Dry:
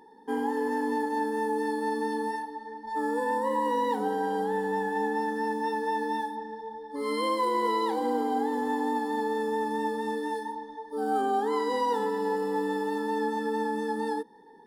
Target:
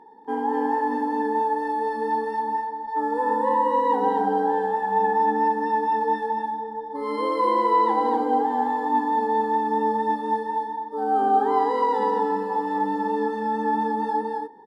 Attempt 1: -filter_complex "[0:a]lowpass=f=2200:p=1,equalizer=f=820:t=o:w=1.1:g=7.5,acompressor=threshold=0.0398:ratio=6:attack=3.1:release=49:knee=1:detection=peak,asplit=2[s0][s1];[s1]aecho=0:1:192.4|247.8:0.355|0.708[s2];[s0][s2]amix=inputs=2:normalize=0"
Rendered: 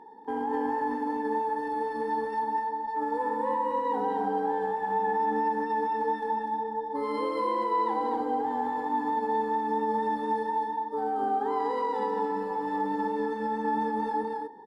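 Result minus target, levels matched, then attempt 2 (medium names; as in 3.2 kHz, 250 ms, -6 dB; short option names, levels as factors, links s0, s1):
compression: peak gain reduction +10 dB
-filter_complex "[0:a]lowpass=f=2200:p=1,equalizer=f=820:t=o:w=1.1:g=7.5,asplit=2[s0][s1];[s1]aecho=0:1:192.4|247.8:0.355|0.708[s2];[s0][s2]amix=inputs=2:normalize=0"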